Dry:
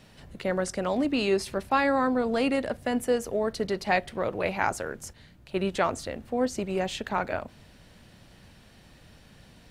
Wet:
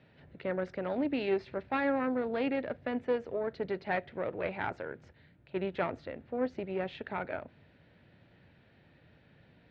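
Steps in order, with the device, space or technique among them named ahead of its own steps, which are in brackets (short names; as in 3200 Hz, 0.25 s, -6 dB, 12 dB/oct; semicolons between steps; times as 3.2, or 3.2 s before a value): guitar amplifier (tube stage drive 14 dB, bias 0.8; tone controls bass +1 dB, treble -8 dB; speaker cabinet 100–3600 Hz, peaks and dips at 210 Hz -6 dB, 760 Hz -3 dB, 1100 Hz -8 dB, 3000 Hz -5 dB)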